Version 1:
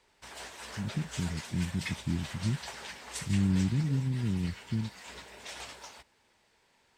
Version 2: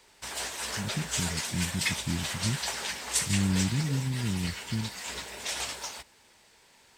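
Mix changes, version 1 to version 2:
background +6.5 dB
master: add high-shelf EQ 4,600 Hz +9 dB

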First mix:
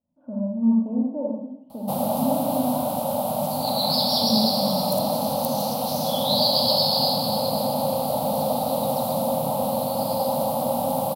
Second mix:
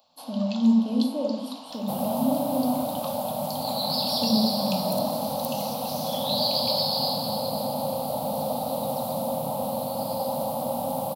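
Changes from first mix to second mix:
speech: remove Butterworth low-pass 1,600 Hz
first sound: unmuted
second sound −4.5 dB

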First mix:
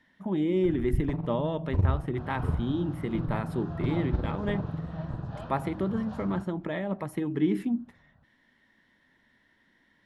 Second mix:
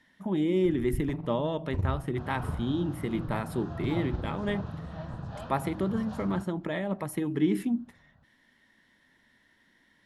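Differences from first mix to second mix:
first sound −5.5 dB
master: add high-shelf EQ 5,400 Hz +11 dB

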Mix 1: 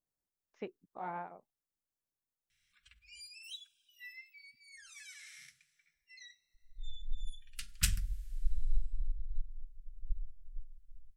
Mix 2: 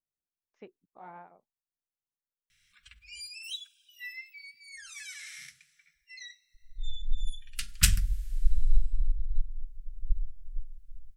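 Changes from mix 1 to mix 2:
speech −6.5 dB
background +8.5 dB

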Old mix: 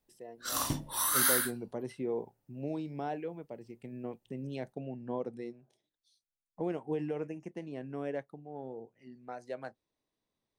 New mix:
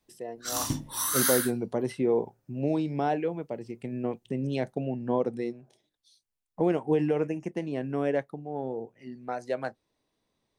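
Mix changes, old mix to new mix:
speech +9.5 dB
background: add graphic EQ with 15 bands 100 Hz +7 dB, 250 Hz +5 dB, 630 Hz −5 dB, 6,300 Hz +6 dB

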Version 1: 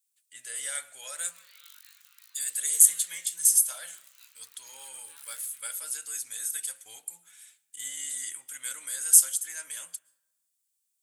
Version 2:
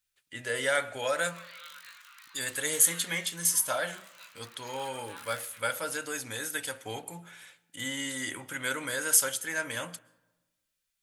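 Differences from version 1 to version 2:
speech: add parametric band 8,200 Hz −7.5 dB 0.5 octaves
master: remove first-order pre-emphasis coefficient 0.97

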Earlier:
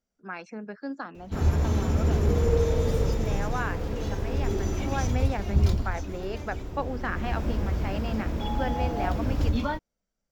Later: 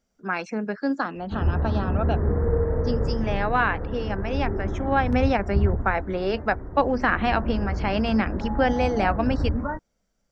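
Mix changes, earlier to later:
speech +10.0 dB
background: add Butterworth low-pass 1,900 Hz 72 dB per octave

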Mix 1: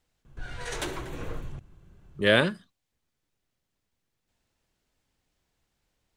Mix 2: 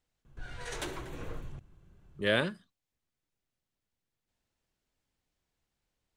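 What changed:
speech −7.0 dB
background −5.0 dB

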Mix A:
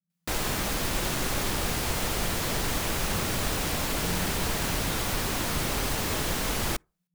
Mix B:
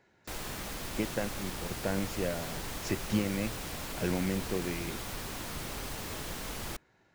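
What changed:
speech: remove flat-topped band-pass 170 Hz, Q 7.8
background −10.5 dB

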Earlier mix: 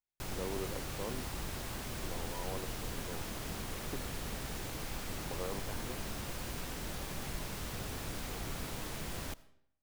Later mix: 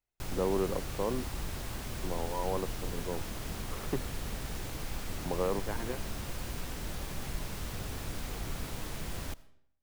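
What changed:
speech +9.5 dB
master: add low-shelf EQ 100 Hz +6 dB

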